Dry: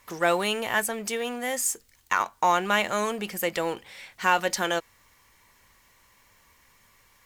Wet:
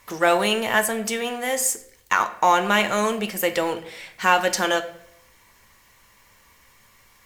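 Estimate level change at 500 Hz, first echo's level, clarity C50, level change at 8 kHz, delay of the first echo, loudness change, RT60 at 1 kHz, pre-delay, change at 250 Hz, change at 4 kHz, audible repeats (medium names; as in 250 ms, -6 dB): +5.0 dB, no echo, 13.0 dB, +4.5 dB, no echo, +4.5 dB, 0.60 s, 9 ms, +5.5 dB, +5.0 dB, no echo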